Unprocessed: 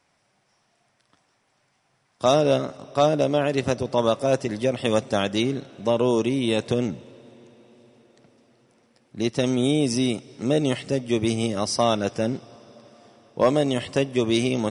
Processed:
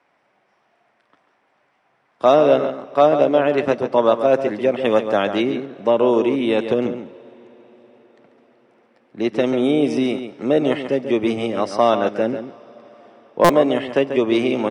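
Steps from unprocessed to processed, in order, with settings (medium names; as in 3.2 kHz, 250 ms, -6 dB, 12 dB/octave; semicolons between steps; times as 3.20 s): three-band isolator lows -16 dB, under 230 Hz, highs -20 dB, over 2.9 kHz; echo from a far wall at 24 m, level -9 dB; buffer glitch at 13.44 s, samples 256, times 8; trim +6 dB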